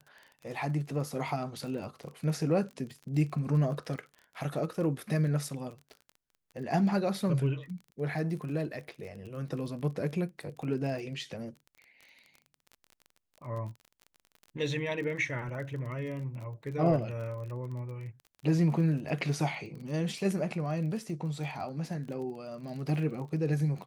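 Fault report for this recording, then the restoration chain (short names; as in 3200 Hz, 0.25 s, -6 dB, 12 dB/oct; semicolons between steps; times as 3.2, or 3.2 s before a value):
crackle 29/s -40 dBFS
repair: de-click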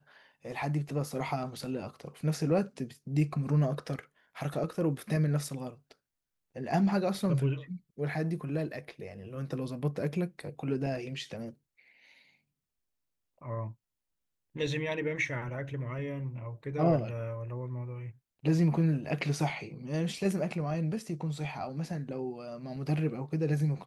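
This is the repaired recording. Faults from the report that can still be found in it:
none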